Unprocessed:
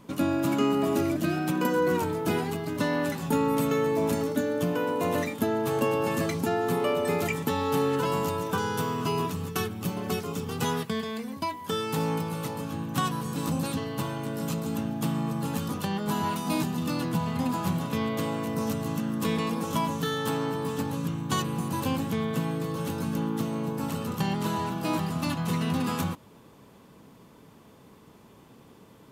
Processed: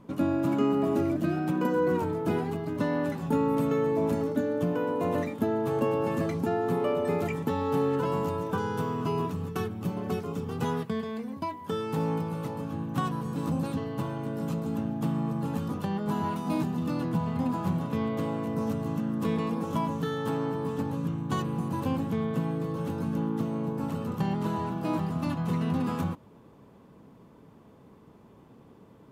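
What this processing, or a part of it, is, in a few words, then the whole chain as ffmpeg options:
through cloth: -af "highshelf=f=2000:g=-13"

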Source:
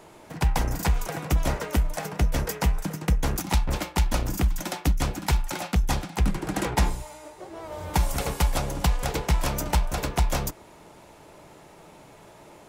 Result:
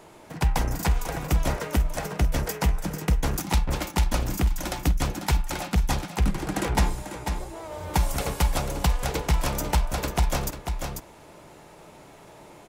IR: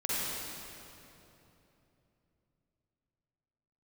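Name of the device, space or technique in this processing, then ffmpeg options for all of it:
ducked delay: -filter_complex "[0:a]asplit=3[s0][s1][s2];[s1]adelay=493,volume=0.531[s3];[s2]apad=whole_len=581138[s4];[s3][s4]sidechaincompress=threshold=0.0447:ratio=8:attack=50:release=709[s5];[s0][s5]amix=inputs=2:normalize=0"

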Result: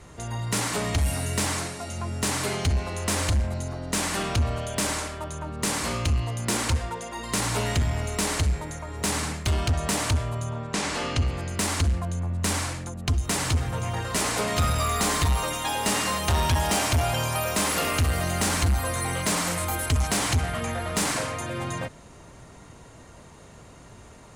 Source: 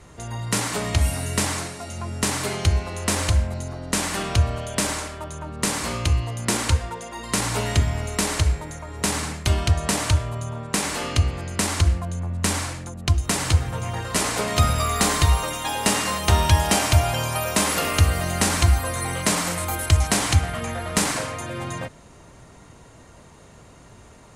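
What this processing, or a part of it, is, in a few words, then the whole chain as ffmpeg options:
saturation between pre-emphasis and de-emphasis: -filter_complex "[0:a]highshelf=f=9200:g=8,asoftclip=type=tanh:threshold=0.133,highshelf=f=9200:g=-8,asettb=1/sr,asplit=3[s0][s1][s2];[s0]atrim=end=10.514[s3];[s1]atrim=start=10.51:end=11.26,asetpts=PTS-STARTPTS,afade=t=in:d=0.004:c=qsin,afade=t=out:st=0.746:d=0.004:c=qsin,lowpass=7100[s4];[s2]atrim=start=11.256[s5];[s3][s4]acrossfade=d=0.004:c1=hsin:c2=qsin[s6];[s6][s5]acrossfade=d=0.004:c1=qsin:c2=hsin"

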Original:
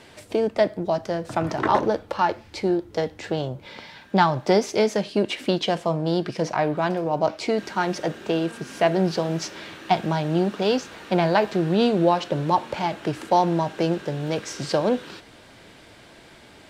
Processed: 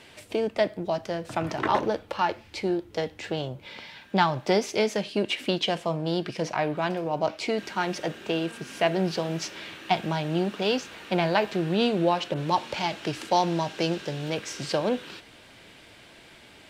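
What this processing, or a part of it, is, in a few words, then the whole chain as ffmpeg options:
presence and air boost: -filter_complex "[0:a]equalizer=f=2700:t=o:w=1:g=6,highshelf=f=9000:g=5.5,asettb=1/sr,asplit=3[s0][s1][s2];[s0]atrim=end=12.344[s3];[s1]atrim=start=12.34:end=14.3,asetpts=PTS-STARTPTS,afade=t=in:d=0.004:c=qsin,afade=t=out:st=1.956:d=0.004:c=qsin,adynamicequalizer=threshold=0.00562:dfrequency=5200:dqfactor=1:tfrequency=5200:tqfactor=1:attack=5:release=100:ratio=0.375:range=3.5:mode=boostabove:tftype=bell[s4];[s2]atrim=start=14.296[s5];[s3][s4]acrossfade=d=0.004:c1=hsin:c2=qsin[s6];[s6][s5]acrossfade=d=0.004:c1=qsin:c2=hsin,volume=0.596"

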